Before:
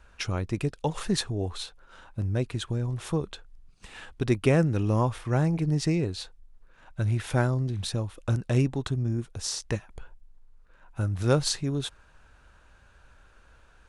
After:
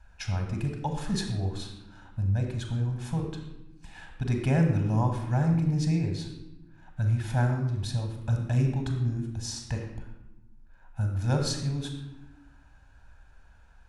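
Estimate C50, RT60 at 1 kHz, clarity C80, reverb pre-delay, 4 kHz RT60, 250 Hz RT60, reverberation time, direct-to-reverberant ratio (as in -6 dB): 5.5 dB, 0.95 s, 7.0 dB, 31 ms, 0.70 s, 1.7 s, 1.0 s, 3.5 dB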